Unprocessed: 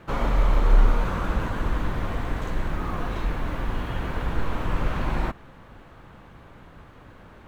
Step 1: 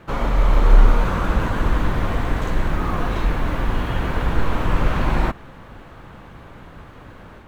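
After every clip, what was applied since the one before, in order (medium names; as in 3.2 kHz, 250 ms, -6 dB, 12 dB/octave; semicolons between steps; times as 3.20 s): level rider gain up to 4 dB; trim +2.5 dB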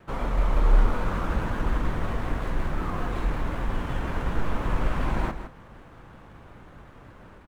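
median filter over 9 samples; on a send: delay 162 ms -10.5 dB; on the sum: vibrato with a chosen wave saw down 5.4 Hz, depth 100 cents; trim -7 dB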